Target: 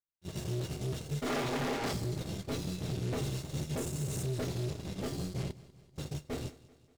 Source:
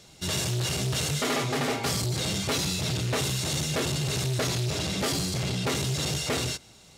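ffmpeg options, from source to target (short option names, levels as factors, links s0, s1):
-filter_complex "[0:a]asettb=1/sr,asplit=3[s0][s1][s2];[s0]atrim=end=3.774[s3];[s1]atrim=start=3.77:end=4.23,asetpts=PTS-STARTPTS,afade=t=in:d=0.004:c=qsin,afade=t=out:st=0.456:d=0.004:c=qsin,highshelf=f=5800:t=q:w=1.5:g=9.5[s4];[s2]atrim=start=4.226[s5];[s3][s4]acrossfade=d=0.004:c1=hsin:c2=qsin[s6];[s6][s5]acrossfade=d=0.004:c1=qsin:c2=hsin,asettb=1/sr,asplit=3[s7][s8][s9];[s7]atrim=end=5.514[s10];[s8]atrim=start=5.51:end=5.96,asetpts=PTS-STARTPTS,afade=t=in:d=0.004:c=qsin,afade=t=out:st=0.446:d=0.004:c=qsin,asoftclip=type=hard:threshold=0.0251[s11];[s9]atrim=start=5.956[s12];[s10][s11]acrossfade=d=0.004:c1=hsin:c2=qsin[s13];[s13][s12]acrossfade=d=0.004:c1=qsin:c2=hsin,aeval=exprs='0.141*(cos(1*acos(clip(val(0)/0.141,-1,1)))-cos(1*PI/2))+0.00398*(cos(3*acos(clip(val(0)/0.141,-1,1)))-cos(3*PI/2))+0.0141*(cos(5*acos(clip(val(0)/0.141,-1,1)))-cos(5*PI/2))+0.00224*(cos(6*acos(clip(val(0)/0.141,-1,1)))-cos(6*PI/2))+0.0282*(cos(7*acos(clip(val(0)/0.141,-1,1)))-cos(7*PI/2))':c=same,tiltshelf=f=650:g=6.5,asettb=1/sr,asplit=3[s14][s15][s16];[s14]atrim=end=1.264[s17];[s15]atrim=start=1.26:end=1.93,asetpts=PTS-STARTPTS,afade=t=in:d=0.004:c=qsin,afade=t=out:st=0.666:d=0.004:c=qsin,asplit=2[s18][s19];[s19]highpass=f=720:p=1,volume=70.8,asoftclip=type=tanh:threshold=0.1[s20];[s18][s20]amix=inputs=2:normalize=0,lowpass=f=4000:p=1,volume=0.501[s21];[s16]atrim=start=1.926[s22];[s17][s21]acrossfade=d=0.004:c1=hsin:c2=qsin[s23];[s23][s22]acrossfade=d=0.004:c1=qsin:c2=hsin,asplit=2[s24][s25];[s25]adelay=28,volume=0.299[s26];[s24][s26]amix=inputs=2:normalize=0,alimiter=level_in=1.06:limit=0.0631:level=0:latency=1:release=336,volume=0.944,agate=range=0.0501:threshold=0.0224:ratio=16:detection=peak,aecho=1:1:193|386|579|772:0.106|0.0572|0.0309|0.0167,volume=0.841"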